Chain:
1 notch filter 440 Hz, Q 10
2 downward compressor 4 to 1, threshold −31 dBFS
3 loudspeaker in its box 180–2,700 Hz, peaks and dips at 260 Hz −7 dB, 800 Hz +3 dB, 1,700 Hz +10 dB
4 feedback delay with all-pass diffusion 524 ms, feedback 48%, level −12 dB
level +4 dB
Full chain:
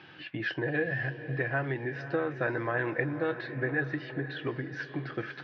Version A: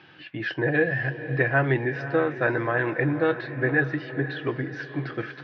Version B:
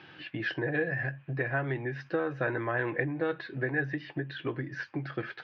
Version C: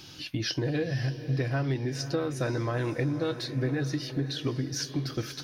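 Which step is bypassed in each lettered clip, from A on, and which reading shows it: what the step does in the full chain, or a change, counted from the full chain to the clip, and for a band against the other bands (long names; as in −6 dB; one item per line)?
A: 2, average gain reduction 5.0 dB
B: 4, echo-to-direct ratio −11.0 dB to none audible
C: 3, 2 kHz band −11.0 dB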